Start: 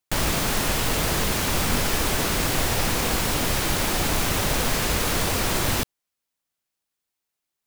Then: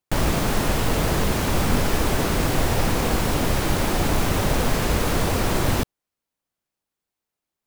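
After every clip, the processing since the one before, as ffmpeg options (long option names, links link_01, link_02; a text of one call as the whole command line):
ffmpeg -i in.wav -af "tiltshelf=frequency=1400:gain=4.5" out.wav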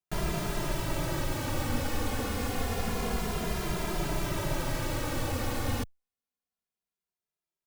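ffmpeg -i in.wav -filter_complex "[0:a]asplit=2[link_01][link_02];[link_02]adelay=2.5,afreqshift=-0.28[link_03];[link_01][link_03]amix=inputs=2:normalize=1,volume=-7dB" out.wav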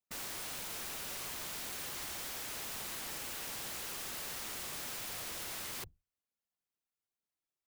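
ffmpeg -i in.wav -af "afftfilt=real='hypot(re,im)*cos(2*PI*random(0))':imag='hypot(re,im)*sin(2*PI*random(1))':win_size=512:overlap=0.75,aeval=exprs='(mod(100*val(0)+1,2)-1)/100':channel_layout=same,volume=2.5dB" out.wav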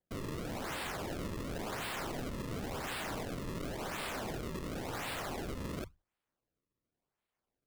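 ffmpeg -i in.wav -af "acrusher=samples=33:mix=1:aa=0.000001:lfo=1:lforange=52.8:lforate=0.93,volume=3dB" out.wav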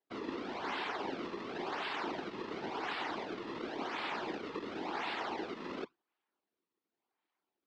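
ffmpeg -i in.wav -af "highpass=frequency=300:width=0.5412,highpass=frequency=300:width=1.3066,equalizer=frequency=340:width_type=q:width=4:gain=7,equalizer=frequency=530:width_type=q:width=4:gain=-10,equalizer=frequency=880:width_type=q:width=4:gain=5,lowpass=frequency=4500:width=0.5412,lowpass=frequency=4500:width=1.3066,afftfilt=real='hypot(re,im)*cos(2*PI*random(0))':imag='hypot(re,im)*sin(2*PI*random(1))':win_size=512:overlap=0.75,volume=7.5dB" out.wav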